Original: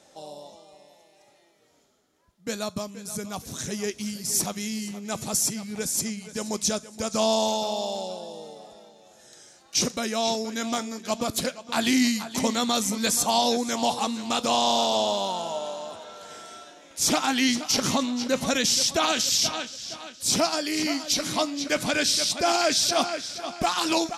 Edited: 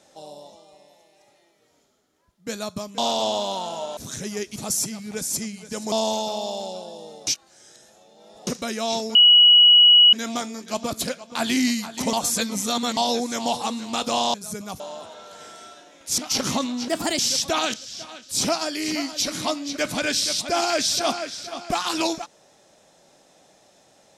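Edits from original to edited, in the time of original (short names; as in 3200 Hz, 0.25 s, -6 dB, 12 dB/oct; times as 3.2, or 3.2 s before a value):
2.98–3.44 swap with 14.71–15.7
4.03–5.2 cut
6.56–7.27 cut
8.62–9.82 reverse
10.5 add tone 2920 Hz -9 dBFS 0.98 s
12.5–13.34 reverse
17.08–17.57 cut
18.27–18.65 speed 124%
19.2–19.65 cut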